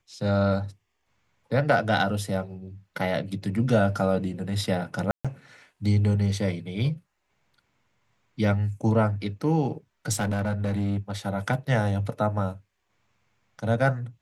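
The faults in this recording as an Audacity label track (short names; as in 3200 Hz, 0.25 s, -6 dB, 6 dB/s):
5.110000	5.250000	gap 0.136 s
10.120000	11.110000	clipped -23 dBFS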